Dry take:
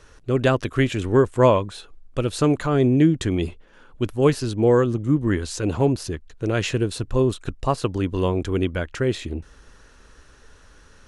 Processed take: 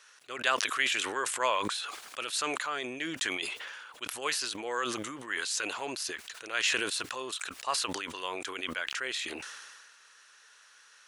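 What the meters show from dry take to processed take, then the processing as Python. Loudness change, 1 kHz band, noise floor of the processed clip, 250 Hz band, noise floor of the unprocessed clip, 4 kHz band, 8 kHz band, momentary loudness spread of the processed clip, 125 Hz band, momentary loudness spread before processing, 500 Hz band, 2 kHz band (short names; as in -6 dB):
-10.5 dB, -5.5 dB, -59 dBFS, -21.0 dB, -51 dBFS, +2.5 dB, +3.0 dB, 11 LU, -33.0 dB, 11 LU, -17.5 dB, +1.0 dB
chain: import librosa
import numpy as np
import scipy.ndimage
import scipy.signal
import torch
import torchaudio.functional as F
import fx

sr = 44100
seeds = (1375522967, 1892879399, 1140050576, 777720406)

y = scipy.signal.sosfilt(scipy.signal.butter(2, 1500.0, 'highpass', fs=sr, output='sos'), x)
y = fx.sustainer(y, sr, db_per_s=31.0)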